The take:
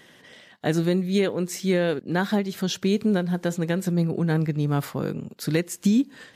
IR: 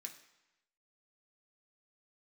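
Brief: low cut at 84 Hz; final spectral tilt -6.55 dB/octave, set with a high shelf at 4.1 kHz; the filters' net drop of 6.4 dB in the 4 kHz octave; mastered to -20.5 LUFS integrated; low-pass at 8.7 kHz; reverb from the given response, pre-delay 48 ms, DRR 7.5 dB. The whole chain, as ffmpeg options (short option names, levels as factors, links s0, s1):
-filter_complex "[0:a]highpass=84,lowpass=8700,equalizer=f=4000:t=o:g=-4,highshelf=f=4100:g=-7,asplit=2[s0][s1];[1:a]atrim=start_sample=2205,adelay=48[s2];[s1][s2]afir=irnorm=-1:irlink=0,volume=0.75[s3];[s0][s3]amix=inputs=2:normalize=0,volume=1.58"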